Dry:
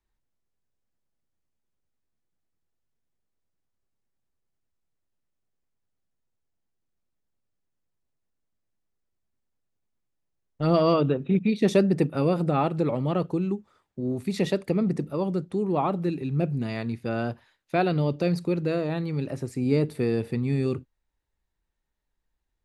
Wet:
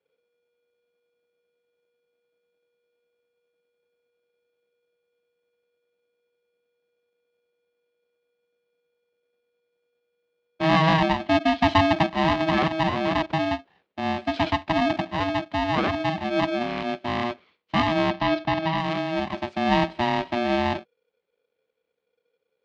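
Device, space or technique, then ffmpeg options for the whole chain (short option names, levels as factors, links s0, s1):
ring modulator pedal into a guitar cabinet: -filter_complex "[0:a]aeval=exprs='val(0)*sgn(sin(2*PI*480*n/s))':c=same,highpass=85,equalizer=f=120:t=q:w=4:g=-7,equalizer=f=180:t=q:w=4:g=4,equalizer=f=1400:t=q:w=4:g=-7,lowpass=f=3900:w=0.5412,lowpass=f=3900:w=1.3066,asettb=1/sr,asplit=3[s0][s1][s2];[s0]atrim=end=18.104[s3];[s1]atrim=start=18.1:end=18.78,asetpts=PTS-STARTPTS,afade=t=in:d=0.004:c=qsin,afade=t=out:st=0.676:d=0.004:c=qsin,lowpass=f=5600:w=0.5412,lowpass=f=5600:w=1.3066[s4];[s2]atrim=start=18.776[s5];[s3][s4]acrossfade=d=0.004:c1=hsin:c2=qsin[s6];[s6][s5]acrossfade=d=0.004:c1=qsin:c2=hsin,volume=1.33"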